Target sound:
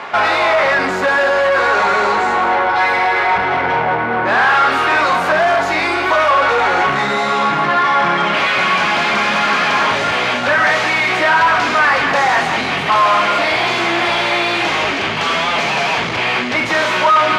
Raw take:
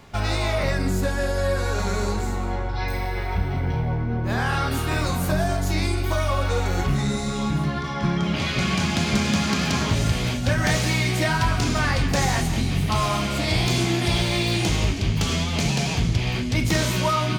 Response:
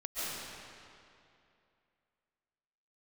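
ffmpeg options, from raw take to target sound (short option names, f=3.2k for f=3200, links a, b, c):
-filter_complex "[0:a]asplit=2[a][b];[b]highpass=f=720:p=1,volume=28dB,asoftclip=type=tanh:threshold=-9.5dB[c];[a][c]amix=inputs=2:normalize=0,lowpass=f=2k:p=1,volume=-6dB,bandpass=f=1.3k:t=q:w=0.68:csg=0,volume=7dB"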